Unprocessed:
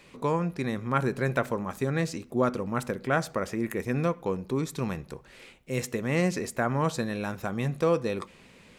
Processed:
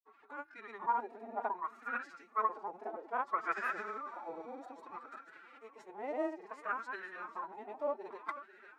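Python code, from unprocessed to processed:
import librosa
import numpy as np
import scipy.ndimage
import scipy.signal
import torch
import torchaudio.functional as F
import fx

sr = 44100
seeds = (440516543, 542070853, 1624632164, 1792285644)

p1 = fx.granulator(x, sr, seeds[0], grain_ms=100.0, per_s=20.0, spray_ms=100.0, spread_st=0)
p2 = fx.spec_repair(p1, sr, seeds[1], start_s=3.58, length_s=0.9, low_hz=860.0, high_hz=8500.0, source='both')
p3 = p2 + fx.echo_feedback(p2, sr, ms=495, feedback_pct=58, wet_db=-12.5, dry=0)
p4 = fx.wah_lfo(p3, sr, hz=0.61, low_hz=740.0, high_hz=1500.0, q=11.0)
p5 = fx.pitch_keep_formants(p4, sr, semitones=9.5)
y = p5 * 10.0 ** (8.5 / 20.0)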